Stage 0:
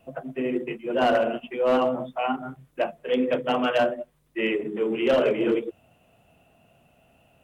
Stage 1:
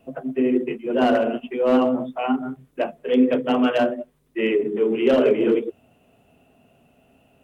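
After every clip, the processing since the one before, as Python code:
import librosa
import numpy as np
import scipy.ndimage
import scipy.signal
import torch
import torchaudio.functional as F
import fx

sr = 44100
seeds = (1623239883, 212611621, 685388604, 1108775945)

y = fx.small_body(x, sr, hz=(260.0, 400.0), ring_ms=45, db=9)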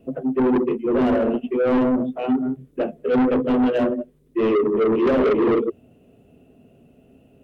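y = fx.low_shelf_res(x, sr, hz=600.0, db=9.5, q=1.5)
y = 10.0 ** (-11.5 / 20.0) * np.tanh(y / 10.0 ** (-11.5 / 20.0))
y = y * librosa.db_to_amplitude(-3.5)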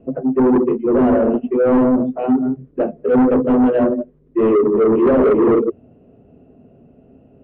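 y = scipy.signal.sosfilt(scipy.signal.butter(2, 1400.0, 'lowpass', fs=sr, output='sos'), x)
y = y * librosa.db_to_amplitude(5.0)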